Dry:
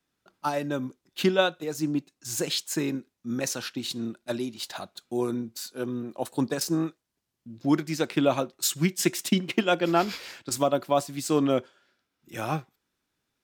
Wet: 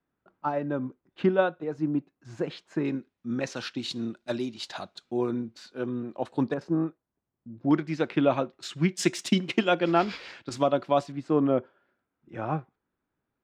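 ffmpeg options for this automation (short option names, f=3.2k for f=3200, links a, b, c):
-af "asetnsamples=n=441:p=0,asendcmd='2.85 lowpass f 3100;3.56 lowpass f 5400;5.11 lowpass f 2900;6.54 lowpass f 1200;7.71 lowpass f 2700;8.97 lowpass f 6600;9.68 lowpass f 3700;11.12 lowpass f 1400',lowpass=1.5k"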